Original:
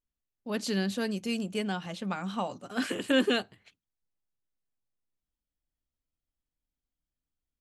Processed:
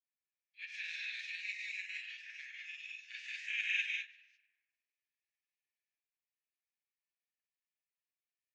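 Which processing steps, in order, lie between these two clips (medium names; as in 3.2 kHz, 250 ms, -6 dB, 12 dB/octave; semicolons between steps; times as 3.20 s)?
spectral peaks clipped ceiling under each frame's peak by 24 dB; rippled Chebyshev high-pass 1.9 kHz, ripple 9 dB; filtered feedback delay 86 ms, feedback 63%, low-pass 3.8 kHz, level -15.5 dB; tape speed -11%; chorus 1.4 Hz, delay 19.5 ms, depth 8 ms; tape spacing loss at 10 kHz 43 dB; gated-style reverb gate 230 ms rising, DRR -3 dB; granulator, spray 21 ms, pitch spread up and down by 0 st; trim +7.5 dB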